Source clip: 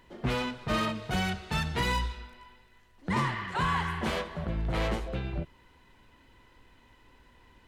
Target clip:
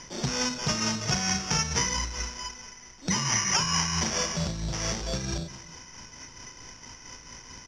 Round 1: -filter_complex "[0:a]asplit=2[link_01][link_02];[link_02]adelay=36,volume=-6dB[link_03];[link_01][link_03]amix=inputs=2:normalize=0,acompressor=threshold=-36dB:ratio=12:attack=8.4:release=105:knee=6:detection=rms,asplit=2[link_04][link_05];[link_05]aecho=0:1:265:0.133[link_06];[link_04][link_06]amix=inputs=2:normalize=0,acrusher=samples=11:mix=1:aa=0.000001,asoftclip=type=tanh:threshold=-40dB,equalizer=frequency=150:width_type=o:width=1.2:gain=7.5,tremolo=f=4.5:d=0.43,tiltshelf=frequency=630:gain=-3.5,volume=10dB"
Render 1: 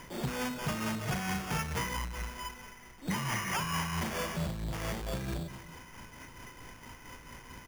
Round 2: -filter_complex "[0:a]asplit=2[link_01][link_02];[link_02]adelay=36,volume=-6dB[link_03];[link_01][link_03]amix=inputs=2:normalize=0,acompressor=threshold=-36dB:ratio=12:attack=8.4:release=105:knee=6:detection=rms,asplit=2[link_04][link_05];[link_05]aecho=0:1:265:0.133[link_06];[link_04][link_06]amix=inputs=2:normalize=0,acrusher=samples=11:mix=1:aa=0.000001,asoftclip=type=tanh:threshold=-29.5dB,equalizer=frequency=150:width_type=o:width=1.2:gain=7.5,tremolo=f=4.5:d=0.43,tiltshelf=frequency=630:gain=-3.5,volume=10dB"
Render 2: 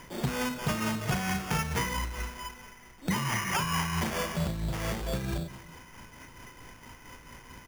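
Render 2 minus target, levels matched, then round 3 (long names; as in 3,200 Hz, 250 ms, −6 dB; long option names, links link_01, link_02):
8,000 Hz band −8.0 dB
-filter_complex "[0:a]asplit=2[link_01][link_02];[link_02]adelay=36,volume=-6dB[link_03];[link_01][link_03]amix=inputs=2:normalize=0,acompressor=threshold=-36dB:ratio=12:attack=8.4:release=105:knee=6:detection=rms,asplit=2[link_04][link_05];[link_05]aecho=0:1:265:0.133[link_06];[link_04][link_06]amix=inputs=2:normalize=0,acrusher=samples=11:mix=1:aa=0.000001,asoftclip=type=tanh:threshold=-29.5dB,lowpass=frequency=5700:width_type=q:width=9.1,equalizer=frequency=150:width_type=o:width=1.2:gain=7.5,tremolo=f=4.5:d=0.43,tiltshelf=frequency=630:gain=-3.5,volume=10dB"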